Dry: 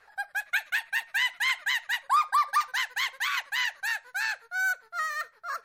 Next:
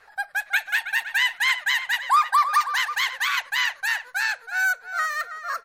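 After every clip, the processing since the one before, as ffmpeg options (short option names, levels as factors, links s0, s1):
-filter_complex "[0:a]asplit=2[s0][s1];[s1]adelay=324,lowpass=f=3600:p=1,volume=0.299,asplit=2[s2][s3];[s3]adelay=324,lowpass=f=3600:p=1,volume=0.18[s4];[s0][s2][s4]amix=inputs=3:normalize=0,volume=1.78"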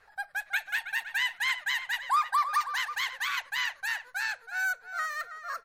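-af "lowshelf=f=180:g=9,volume=0.422"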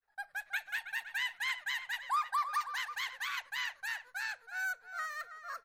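-af "agate=range=0.0224:threshold=0.00355:ratio=3:detection=peak,volume=0.473"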